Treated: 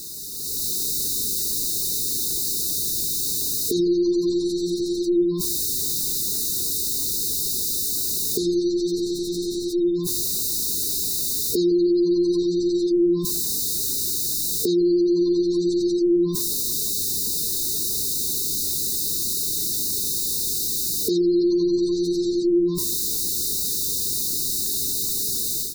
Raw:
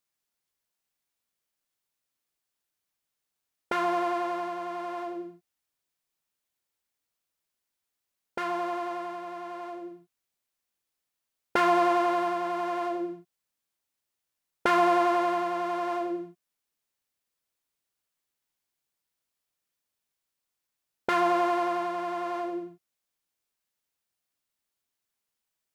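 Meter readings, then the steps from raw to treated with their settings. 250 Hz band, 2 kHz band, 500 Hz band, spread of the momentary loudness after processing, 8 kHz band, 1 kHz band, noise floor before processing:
+13.5 dB, under -40 dB, +8.0 dB, 3 LU, +32.5 dB, under -25 dB, -85 dBFS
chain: zero-crossing step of -31 dBFS; FFT band-reject 460–3600 Hz; limiter -26.5 dBFS, peak gain reduction 8 dB; AGC gain up to 11 dB; speakerphone echo 0.16 s, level -13 dB; spectral gate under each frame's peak -30 dB strong; gain +3 dB

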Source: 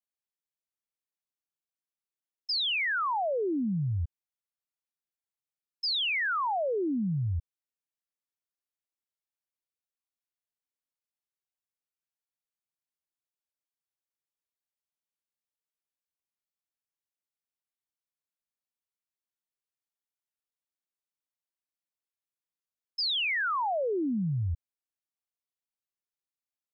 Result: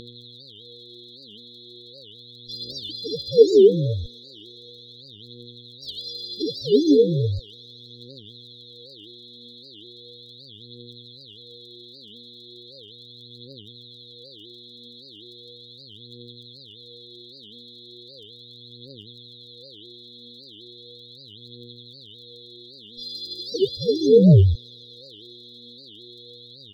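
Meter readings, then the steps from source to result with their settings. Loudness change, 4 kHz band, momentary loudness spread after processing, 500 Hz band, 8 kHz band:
+9.5 dB, +2.5 dB, 21 LU, +16.0 dB, n/a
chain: sample sorter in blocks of 64 samples; spectral gate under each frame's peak -20 dB strong; comb 6.8 ms, depth 58%; small resonant body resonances 460/2300 Hz, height 17 dB, ringing for 60 ms; buzz 120 Hz, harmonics 35, -50 dBFS 0 dB/oct; phaser 0.37 Hz, delay 3.9 ms, feedback 63%; brick-wall FIR band-stop 550–3300 Hz; on a send: thin delay 0.128 s, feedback 84%, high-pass 1900 Hz, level -21.5 dB; on the sum: record warp 78 rpm, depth 250 cents; gain +8 dB

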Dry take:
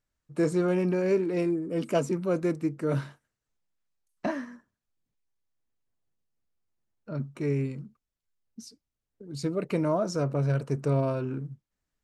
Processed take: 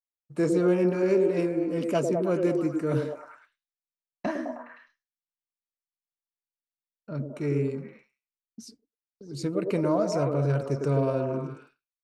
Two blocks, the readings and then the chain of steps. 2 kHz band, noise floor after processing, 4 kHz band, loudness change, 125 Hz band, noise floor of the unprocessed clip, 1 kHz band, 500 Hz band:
+0.5 dB, under -85 dBFS, 0.0 dB, +2.0 dB, 0.0 dB, under -85 dBFS, +1.5 dB, +3.0 dB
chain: delay with a stepping band-pass 0.104 s, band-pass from 390 Hz, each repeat 0.7 oct, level -0.5 dB; expander -48 dBFS

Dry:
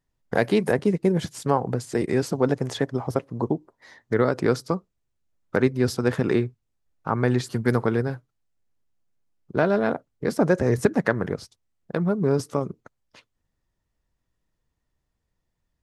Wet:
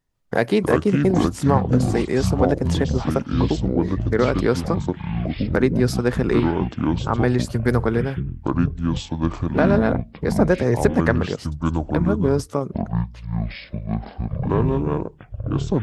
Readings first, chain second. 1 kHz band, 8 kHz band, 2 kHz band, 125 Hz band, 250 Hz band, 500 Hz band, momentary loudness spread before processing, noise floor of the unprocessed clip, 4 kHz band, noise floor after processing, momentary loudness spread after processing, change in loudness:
+4.5 dB, +3.0 dB, +2.5 dB, +7.5 dB, +6.0 dB, +3.0 dB, 9 LU, -78 dBFS, +5.0 dB, -44 dBFS, 9 LU, +3.0 dB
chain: echoes that change speed 0.15 s, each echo -7 st, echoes 3; gain +2 dB

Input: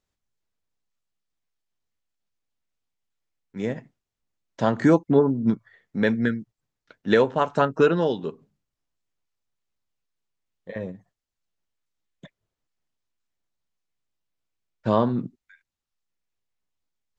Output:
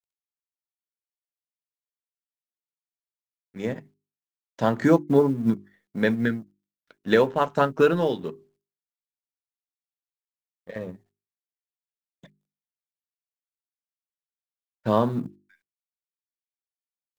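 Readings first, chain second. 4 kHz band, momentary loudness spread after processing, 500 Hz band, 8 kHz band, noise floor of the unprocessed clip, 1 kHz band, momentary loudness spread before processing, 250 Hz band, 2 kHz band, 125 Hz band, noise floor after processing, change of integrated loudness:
0.0 dB, 18 LU, -0.5 dB, n/a, under -85 dBFS, -0.5 dB, 17 LU, -1.0 dB, 0.0 dB, -1.0 dB, under -85 dBFS, -0.5 dB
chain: G.711 law mismatch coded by A; notches 50/100/150/200/250/300/350/400 Hz

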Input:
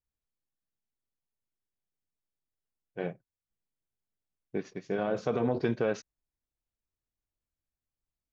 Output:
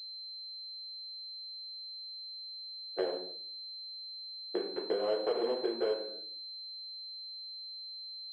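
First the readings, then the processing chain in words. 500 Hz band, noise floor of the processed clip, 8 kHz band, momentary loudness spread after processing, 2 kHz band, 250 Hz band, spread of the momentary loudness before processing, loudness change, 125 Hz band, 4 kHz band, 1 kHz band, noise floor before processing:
0.0 dB, -45 dBFS, n/a, 9 LU, -7.0 dB, -6.5 dB, 10 LU, -5.0 dB, under -25 dB, +19.5 dB, -3.5 dB, under -85 dBFS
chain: median filter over 25 samples; in parallel at -7 dB: bit-crush 5-bit; on the sum: tremolo 5.3 Hz, depth 45%; shoebox room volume 41 m³, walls mixed, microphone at 0.92 m; compressor 6:1, threshold -30 dBFS, peak gain reduction 14.5 dB; HPF 360 Hz 24 dB/oct; pulse-width modulation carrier 4100 Hz; gain +2.5 dB

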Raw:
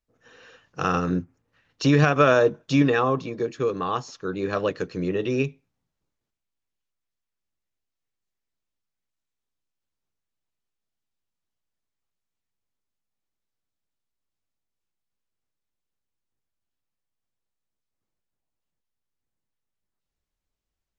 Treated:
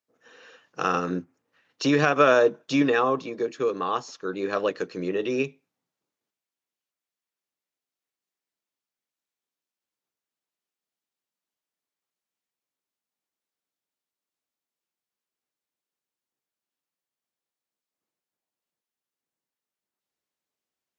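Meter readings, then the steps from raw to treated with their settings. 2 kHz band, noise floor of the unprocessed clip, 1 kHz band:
0.0 dB, -84 dBFS, 0.0 dB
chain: HPF 250 Hz 12 dB/oct

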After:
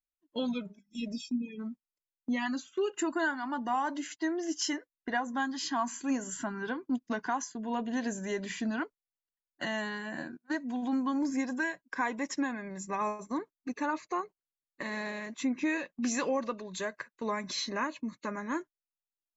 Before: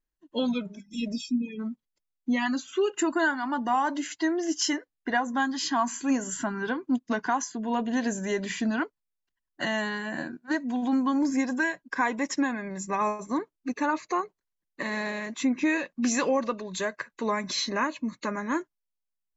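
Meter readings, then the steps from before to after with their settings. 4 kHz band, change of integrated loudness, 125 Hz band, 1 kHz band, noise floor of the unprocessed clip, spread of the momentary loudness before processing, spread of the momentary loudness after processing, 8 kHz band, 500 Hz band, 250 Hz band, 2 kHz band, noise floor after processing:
-5.5 dB, -5.5 dB, -5.5 dB, -5.5 dB, -84 dBFS, 7 LU, 7 LU, n/a, -5.5 dB, -5.5 dB, -5.5 dB, under -85 dBFS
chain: gate -39 dBFS, range -12 dB; gain -5.5 dB

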